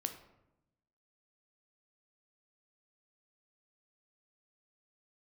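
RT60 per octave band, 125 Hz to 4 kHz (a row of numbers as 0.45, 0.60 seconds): 1.3, 1.2, 0.95, 0.85, 0.70, 0.50 seconds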